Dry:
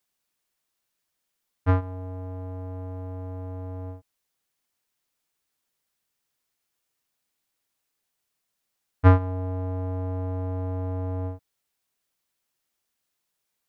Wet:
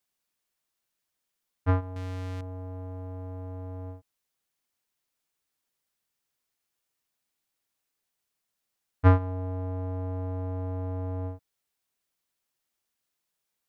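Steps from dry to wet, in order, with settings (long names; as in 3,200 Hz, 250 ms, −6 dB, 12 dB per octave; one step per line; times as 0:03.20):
0:01.96–0:02.41: leveller curve on the samples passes 5
level −3 dB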